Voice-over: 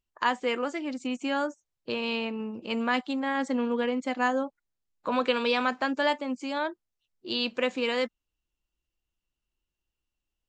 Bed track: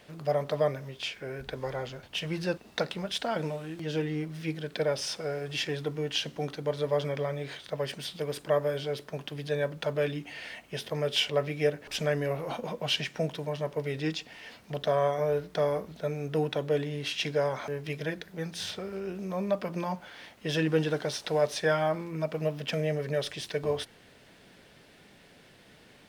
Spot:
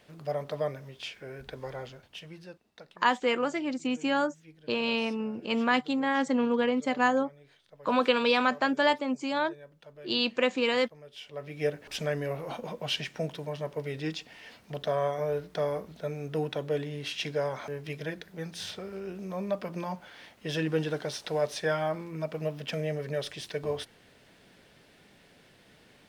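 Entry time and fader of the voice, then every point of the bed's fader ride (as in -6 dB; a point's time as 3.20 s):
2.80 s, +1.5 dB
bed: 1.84 s -4.5 dB
2.71 s -20.5 dB
11.15 s -20.5 dB
11.65 s -2.5 dB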